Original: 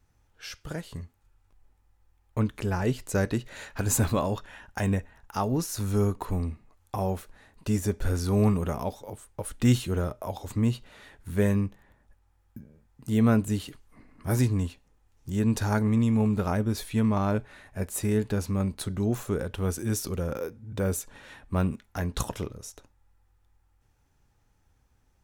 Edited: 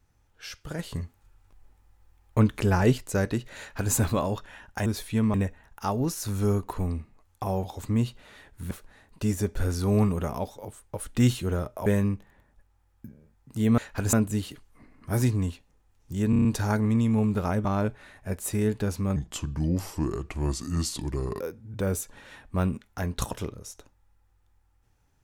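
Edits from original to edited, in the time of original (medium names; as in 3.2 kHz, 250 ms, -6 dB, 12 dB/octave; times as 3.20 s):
0.79–2.98 s: gain +5.5 dB
3.59–3.94 s: copy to 13.30 s
10.31–11.38 s: move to 7.16 s
15.47 s: stutter 0.03 s, 6 plays
16.67–17.15 s: move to 4.86 s
18.66–20.39 s: speed 77%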